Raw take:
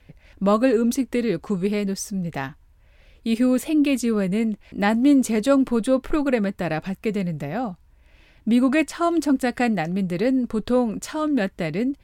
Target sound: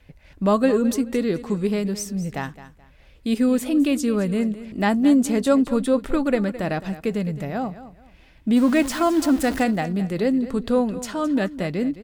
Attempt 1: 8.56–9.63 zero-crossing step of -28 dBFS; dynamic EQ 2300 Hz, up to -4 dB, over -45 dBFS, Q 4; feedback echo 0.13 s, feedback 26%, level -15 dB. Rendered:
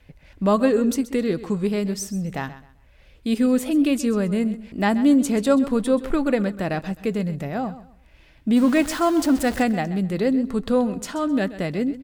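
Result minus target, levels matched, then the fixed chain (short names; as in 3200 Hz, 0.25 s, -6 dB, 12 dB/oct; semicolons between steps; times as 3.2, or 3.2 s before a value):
echo 84 ms early
8.56–9.63 zero-crossing step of -28 dBFS; dynamic EQ 2300 Hz, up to -4 dB, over -45 dBFS, Q 4; feedback echo 0.214 s, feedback 26%, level -15 dB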